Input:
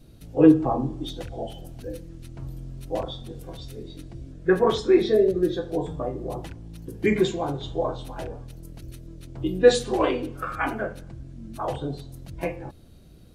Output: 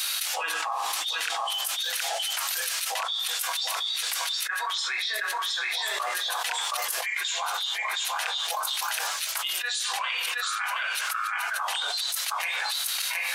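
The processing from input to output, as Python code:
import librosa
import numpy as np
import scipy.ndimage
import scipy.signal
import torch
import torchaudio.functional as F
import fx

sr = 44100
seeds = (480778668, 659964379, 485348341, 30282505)

y = scipy.signal.sosfilt(scipy.signal.bessel(6, 1800.0, 'highpass', norm='mag', fs=sr, output='sos'), x)
y = y + 10.0 ** (-6.0 / 20.0) * np.pad(y, (int(720 * sr / 1000.0), 0))[:len(y)]
y = fx.env_flatten(y, sr, amount_pct=100)
y = y * librosa.db_to_amplitude(-1.5)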